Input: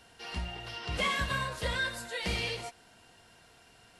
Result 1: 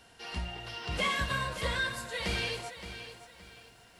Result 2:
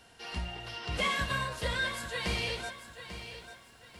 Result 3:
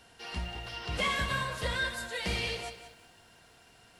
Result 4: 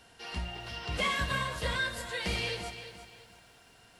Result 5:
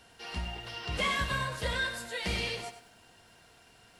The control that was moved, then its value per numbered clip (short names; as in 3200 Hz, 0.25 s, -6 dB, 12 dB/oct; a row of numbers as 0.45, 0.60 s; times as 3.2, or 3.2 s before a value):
lo-fi delay, time: 569, 843, 184, 346, 98 ms